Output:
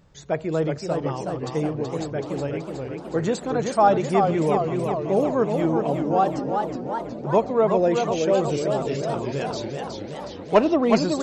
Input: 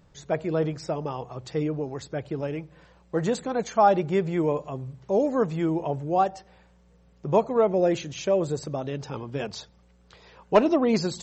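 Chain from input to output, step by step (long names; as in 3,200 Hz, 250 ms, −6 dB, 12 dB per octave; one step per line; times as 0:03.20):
echo through a band-pass that steps 639 ms, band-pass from 280 Hz, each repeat 0.7 octaves, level −11.5 dB
feedback echo with a swinging delay time 372 ms, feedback 65%, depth 164 cents, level −5 dB
level +1.5 dB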